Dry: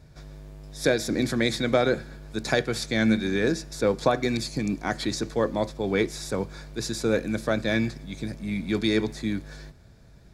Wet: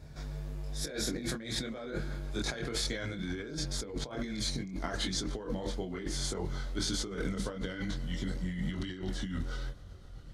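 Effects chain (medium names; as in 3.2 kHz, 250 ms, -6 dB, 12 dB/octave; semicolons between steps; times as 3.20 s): pitch bend over the whole clip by -3 st starting unshifted; chorus voices 4, 1 Hz, delay 24 ms, depth 3.2 ms; compressor with a negative ratio -36 dBFS, ratio -1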